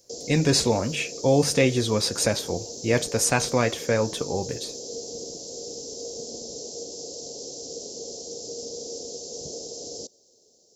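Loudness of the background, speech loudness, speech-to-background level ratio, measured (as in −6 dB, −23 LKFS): −35.0 LKFS, −23.5 LKFS, 11.5 dB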